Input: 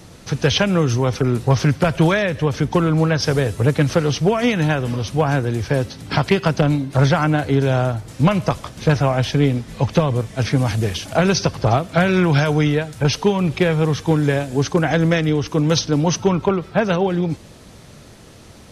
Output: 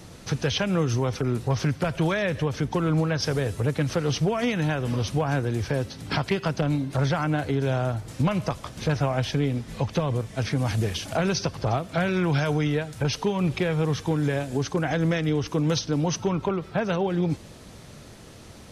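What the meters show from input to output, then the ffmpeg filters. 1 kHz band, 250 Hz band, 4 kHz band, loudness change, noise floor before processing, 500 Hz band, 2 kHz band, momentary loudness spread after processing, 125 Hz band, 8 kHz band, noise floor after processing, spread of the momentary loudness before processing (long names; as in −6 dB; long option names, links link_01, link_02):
−7.5 dB, −7.0 dB, −7.0 dB, −7.5 dB, −43 dBFS, −7.5 dB, −7.5 dB, 5 LU, −7.0 dB, −6.5 dB, −45 dBFS, 5 LU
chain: -af "alimiter=limit=-13dB:level=0:latency=1:release=274,volume=-2.5dB"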